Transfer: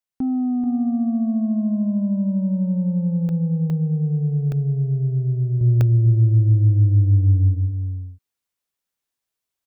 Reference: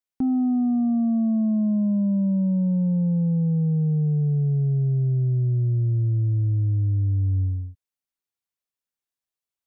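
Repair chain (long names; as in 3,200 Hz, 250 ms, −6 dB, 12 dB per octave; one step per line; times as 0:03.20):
repair the gap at 0:03.29/0:03.70/0:04.52/0:05.81, 1 ms
echo removal 435 ms −8.5 dB
level correction −6 dB, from 0:05.61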